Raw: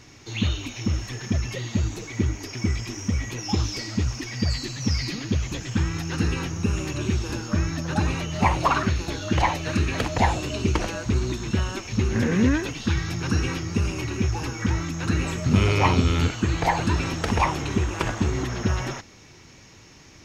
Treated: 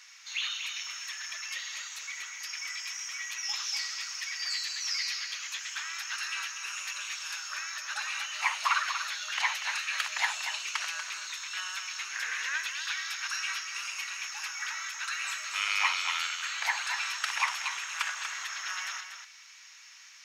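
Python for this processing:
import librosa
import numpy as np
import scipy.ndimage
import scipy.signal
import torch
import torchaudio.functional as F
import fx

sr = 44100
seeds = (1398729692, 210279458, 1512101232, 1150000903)

p1 = scipy.signal.sosfilt(scipy.signal.butter(4, 1300.0, 'highpass', fs=sr, output='sos'), x)
y = p1 + fx.echo_single(p1, sr, ms=240, db=-8.0, dry=0)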